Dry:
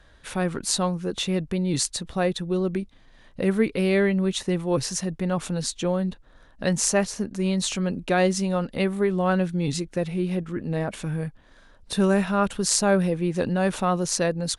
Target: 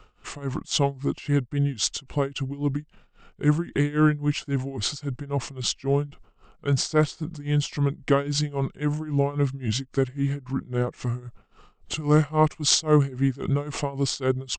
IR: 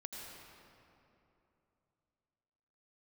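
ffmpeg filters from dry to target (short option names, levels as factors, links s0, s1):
-af "asetrate=34006,aresample=44100,atempo=1.29684,tremolo=f=3.7:d=0.9,volume=1.5"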